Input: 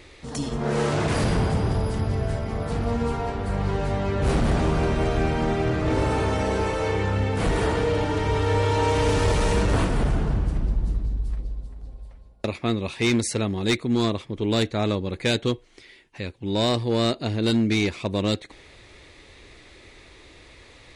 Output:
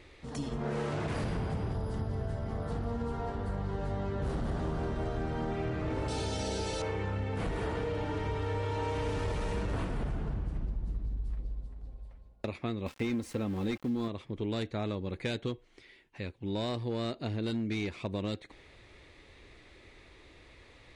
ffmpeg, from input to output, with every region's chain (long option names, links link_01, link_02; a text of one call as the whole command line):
ffmpeg -i in.wav -filter_complex "[0:a]asettb=1/sr,asplit=3[link_01][link_02][link_03];[link_01]atrim=end=1.744[link_04];[link_02]atrim=start=1.74:end=5.52,asetpts=PTS-STARTPTS,afade=type=in:duration=0.004:curve=qsin,afade=type=out:start_time=3.776:duration=0.004:curve=qsin,equalizer=frequency=2400:width_type=o:width=0.41:gain=-8.5,aecho=1:1:249:0.158,atrim=end_sample=166698[link_05];[link_03]atrim=start=5.516[link_06];[link_04][link_05]acrossfade=duration=0.004:curve1=hsin:curve2=qsin[link_07];[link_07][link_06]acrossfade=duration=0.004:curve1=qsin:curve2=hsin,asettb=1/sr,asplit=3[link_08][link_09][link_10];[link_08]atrim=end=6.084[link_11];[link_09]atrim=start=6.08:end=6.82,asetpts=PTS-STARTPTS,afade=type=in:duration=0.004:curve=qsin,afade=type=out:start_time=0.736:duration=0.004:curve=qsin,asuperstop=centerf=1100:order=8:qfactor=6.2,highshelf=frequency=3000:width_type=q:width=1.5:gain=13.5[link_12];[link_10]atrim=start=6.816[link_13];[link_11][link_12]acrossfade=duration=0.004:curve1=hsin:curve2=qsin[link_14];[link_14][link_13]acrossfade=duration=0.004:curve1=qsin:curve2=hsin,asettb=1/sr,asplit=3[link_15][link_16][link_17];[link_15]atrim=end=12.864[link_18];[link_16]atrim=start=12.86:end=14.08,asetpts=PTS-STARTPTS,afade=type=in:duration=0.004:curve=qsin,afade=type=out:start_time=1.216:duration=0.004:curve=qsin,tiltshelf=frequency=1500:gain=4,aeval=exprs='val(0)*gte(abs(val(0)),0.0224)':channel_layout=same,aecho=1:1:3.8:0.38,atrim=end_sample=53802[link_19];[link_17]atrim=start=14.076[link_20];[link_18][link_19]acrossfade=duration=0.004:curve1=hsin:curve2=qsin[link_21];[link_21][link_20]acrossfade=duration=0.004:curve1=qsin:curve2=hsin,bass=frequency=250:gain=1,treble=frequency=4000:gain=-6,acompressor=threshold=-23dB:ratio=6,volume=-7dB" out.wav